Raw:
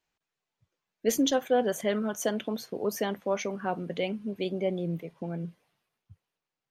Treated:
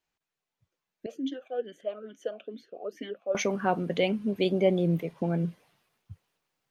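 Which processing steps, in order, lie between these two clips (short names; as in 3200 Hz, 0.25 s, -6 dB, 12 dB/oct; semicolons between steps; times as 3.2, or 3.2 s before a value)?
vocal rider within 5 dB 2 s; 1.06–3.35 vowel sweep a-i 2.3 Hz; gain +3 dB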